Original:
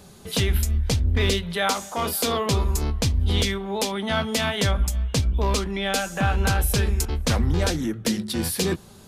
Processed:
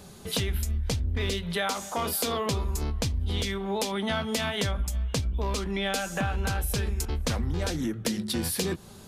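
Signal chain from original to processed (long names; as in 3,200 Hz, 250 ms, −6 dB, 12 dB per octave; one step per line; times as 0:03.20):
downward compressor, threshold −25 dBFS, peak gain reduction 8.5 dB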